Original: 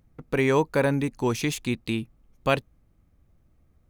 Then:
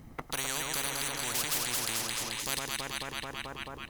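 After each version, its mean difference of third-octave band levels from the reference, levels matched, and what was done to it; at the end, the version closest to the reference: 16.0 dB: comb 1 ms, depth 33%; on a send: echo whose repeats swap between lows and highs 109 ms, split 1.3 kHz, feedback 75%, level -3.5 dB; on the sum: spectrum-flattening compressor 10:1; trim -5 dB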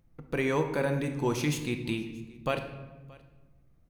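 4.5 dB: band-stop 7.5 kHz, Q 26; peak limiter -14 dBFS, peak gain reduction 6 dB; delay 626 ms -24 dB; simulated room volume 640 m³, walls mixed, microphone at 0.8 m; trim -4.5 dB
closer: second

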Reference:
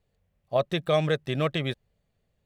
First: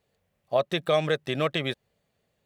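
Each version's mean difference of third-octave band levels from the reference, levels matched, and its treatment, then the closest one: 2.0 dB: in parallel at +1.5 dB: compression, threshold -30 dBFS, peak gain reduction 11.5 dB; on the sum: high-pass 270 Hz 6 dB/octave; trim -1.5 dB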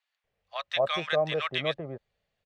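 9.5 dB: three-band isolator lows -14 dB, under 550 Hz, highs -22 dB, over 6.2 kHz; bands offset in time highs, lows 240 ms, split 960 Hz; trim +3 dB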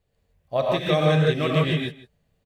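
6.5 dB: delay 161 ms -18.5 dB; gated-style reverb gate 190 ms rising, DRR -3.5 dB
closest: first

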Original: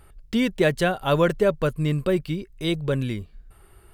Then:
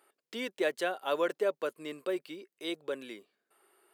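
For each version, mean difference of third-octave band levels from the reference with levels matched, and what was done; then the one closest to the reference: 5.5 dB: high-pass 330 Hz 24 dB/octave; trim -9 dB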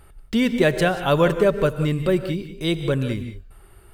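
3.5 dB: gated-style reverb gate 210 ms rising, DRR 9.5 dB; trim +2 dB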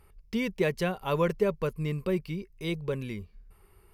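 2.0 dB: rippled EQ curve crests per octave 0.83, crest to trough 7 dB; trim -7.5 dB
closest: third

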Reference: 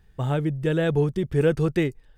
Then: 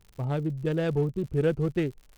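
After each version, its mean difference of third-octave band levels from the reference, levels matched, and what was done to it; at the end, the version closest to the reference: 2.5 dB: local Wiener filter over 25 samples; crackle 95 per s -37 dBFS; trim -4 dB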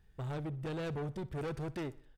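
5.5 dB: saturation -27.5 dBFS, distortion -6 dB; feedback delay 62 ms, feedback 48%, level -20 dB; trim -8 dB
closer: first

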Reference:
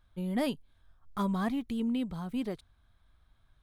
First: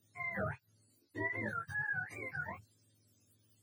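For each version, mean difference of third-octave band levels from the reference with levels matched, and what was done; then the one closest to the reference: 13.0 dB: spectrum inverted on a logarithmic axis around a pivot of 620 Hz; chorus 1.4 Hz, delay 18.5 ms, depth 2.3 ms; in parallel at -1 dB: compression, threshold -46 dBFS, peak gain reduction 14.5 dB; on the sum: trim -3.5 dB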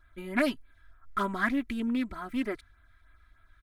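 4.0 dB: high-order bell 1.7 kHz +11.5 dB 1.1 oct; comb 3 ms, depth 89%; LFO notch sine 3.3 Hz 450–6100 Hz; loudspeaker Doppler distortion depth 0.16 ms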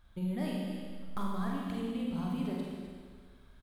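7.5 dB: compression 6:1, threshold -41 dBFS, peak gain reduction 14.5 dB; on a send: delay 255 ms -10.5 dB; on the sum: Schroeder reverb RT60 1.7 s, combs from 33 ms, DRR -3 dB; trim +3 dB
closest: second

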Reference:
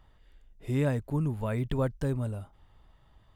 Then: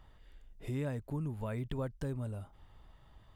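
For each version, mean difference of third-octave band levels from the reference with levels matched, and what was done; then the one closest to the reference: 2.0 dB: compression 2:1, threshold -42 dBFS, peak gain reduction 11 dB; trim +1 dB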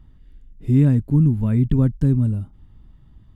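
7.5 dB: resonant low shelf 380 Hz +13.5 dB, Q 1.5; trim -1.5 dB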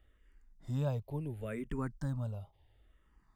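3.5 dB: barber-pole phaser -0.71 Hz; trim -4.5 dB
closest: first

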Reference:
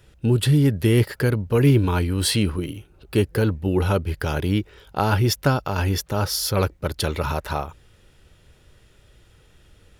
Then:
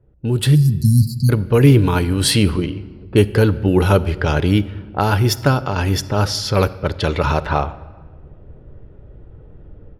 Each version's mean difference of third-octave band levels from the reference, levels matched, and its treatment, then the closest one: 4.5 dB: level-controlled noise filter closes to 550 Hz, open at -17.5 dBFS; spectral selection erased 0.55–1.30 s, 250–3900 Hz; level rider gain up to 15 dB; simulated room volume 1700 m³, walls mixed, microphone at 0.34 m; trim -1.5 dB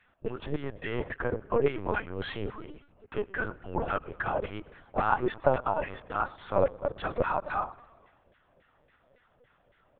10.0 dB: peaking EQ 650 Hz +4.5 dB 2.3 oct; LFO band-pass saw down 3.6 Hz 470–2000 Hz; on a send: frequency-shifting echo 114 ms, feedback 63%, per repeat -34 Hz, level -22 dB; on the sum: LPC vocoder at 8 kHz pitch kept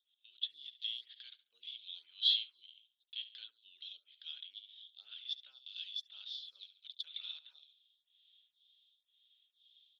22.0 dB: rotary cabinet horn 0.8 Hz; Butterworth band-pass 3.5 kHz, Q 6.1; on a send: feedback delay 70 ms, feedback 40%, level -15 dB; on the sum: lamp-driven phase shifter 1 Hz; trim +5.5 dB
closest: first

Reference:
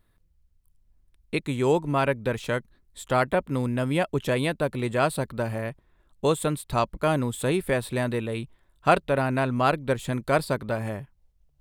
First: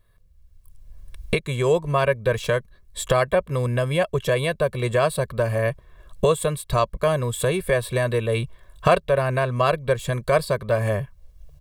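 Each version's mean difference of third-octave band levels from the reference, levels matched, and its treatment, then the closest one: 3.0 dB: recorder AGC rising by 16 dB/s; comb 1.8 ms, depth 83%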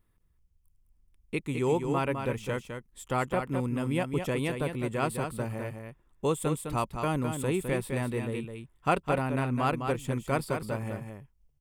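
4.0 dB: graphic EQ with 31 bands 630 Hz -7 dB, 1.6 kHz -6 dB, 4 kHz -10 dB; on a send: delay 208 ms -6.5 dB; on the sum: trim -4 dB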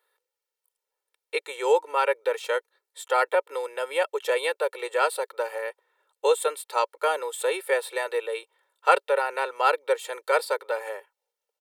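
10.0 dB: elliptic high-pass 460 Hz, stop band 60 dB; comb 2.2 ms, depth 78%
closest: first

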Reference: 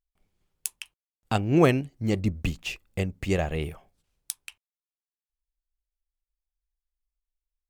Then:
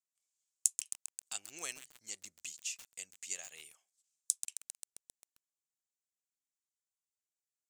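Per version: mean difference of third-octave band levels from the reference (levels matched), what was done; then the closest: 14.0 dB: band-pass filter 7.2 kHz, Q 3.5; tilt EQ +1.5 dB/octave; bit-crushed delay 133 ms, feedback 80%, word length 7-bit, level -9 dB; trim +3.5 dB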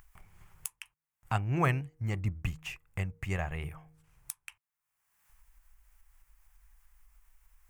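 3.5 dB: de-hum 156.6 Hz, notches 3; upward compressor, threshold -29 dBFS; graphic EQ 125/250/500/1000/2000/4000 Hz +6/-10/-8/+6/+5/-11 dB; trim -6 dB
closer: second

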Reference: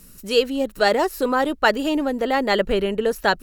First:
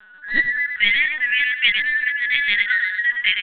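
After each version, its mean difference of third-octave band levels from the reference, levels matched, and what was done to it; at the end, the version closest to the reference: 17.5 dB: four frequency bands reordered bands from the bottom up 4123; on a send: feedback delay 105 ms, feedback 26%, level -6 dB; on the sum: LPC vocoder at 8 kHz pitch kept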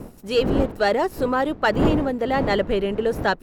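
7.5 dB: wind noise 370 Hz -26 dBFS; waveshaping leveller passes 1; treble shelf 3.9 kHz -8 dB; trim -4.5 dB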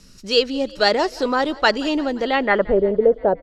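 5.5 dB: vibrato 3.6 Hz 19 cents; low-pass sweep 5.2 kHz -> 560 Hz, 2.24–2.79 s; on a send: frequency-shifting echo 175 ms, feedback 63%, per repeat +30 Hz, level -22 dB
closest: third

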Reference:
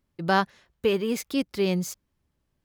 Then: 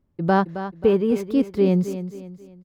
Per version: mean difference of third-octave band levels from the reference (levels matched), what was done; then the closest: 8.0 dB: tilt shelf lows +9 dB, about 1.4 kHz; on a send: feedback delay 268 ms, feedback 39%, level -11.5 dB; on the sum: trim -1.5 dB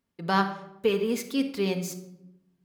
5.0 dB: high-pass 180 Hz 6 dB/octave; simulated room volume 2600 m³, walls furnished, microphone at 1.7 m; trim -2.5 dB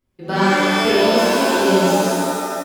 14.5 dB: on a send: loudspeakers at several distances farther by 25 m -5 dB, 45 m -9 dB; on the sum: pitch-shifted reverb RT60 2.3 s, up +7 st, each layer -2 dB, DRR -11 dB; trim -5 dB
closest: second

